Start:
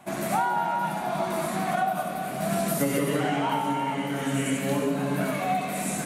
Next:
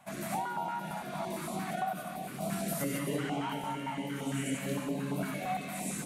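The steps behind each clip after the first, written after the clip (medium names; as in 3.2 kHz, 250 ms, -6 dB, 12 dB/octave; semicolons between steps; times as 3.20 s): step-sequenced notch 8.8 Hz 350–1700 Hz; trim -6.5 dB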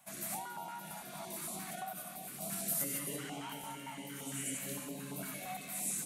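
pre-emphasis filter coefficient 0.8; trim +3.5 dB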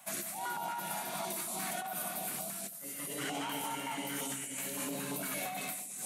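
high-pass 280 Hz 6 dB/octave; bucket-brigade echo 164 ms, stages 2048, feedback 83%, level -15 dB; compressor with a negative ratio -45 dBFS, ratio -1; trim +6 dB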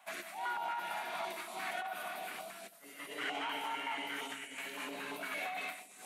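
three-band isolator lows -19 dB, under 310 Hz, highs -15 dB, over 4 kHz; band-stop 550 Hz, Q 12; dynamic bell 2.1 kHz, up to +5 dB, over -53 dBFS, Q 0.91; trim -1 dB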